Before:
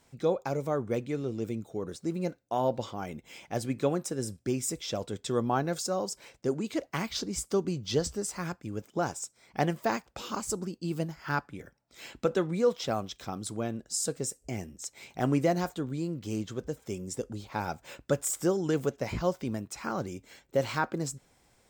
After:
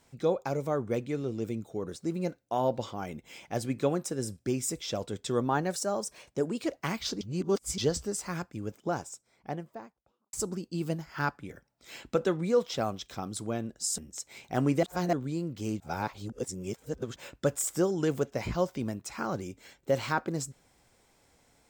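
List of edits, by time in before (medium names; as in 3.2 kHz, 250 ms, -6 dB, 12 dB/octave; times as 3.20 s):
5.41–6.76 s: speed 108%
7.31–7.88 s: reverse
8.58–10.43 s: studio fade out
14.08–14.64 s: delete
15.49–15.79 s: reverse
16.46–17.82 s: reverse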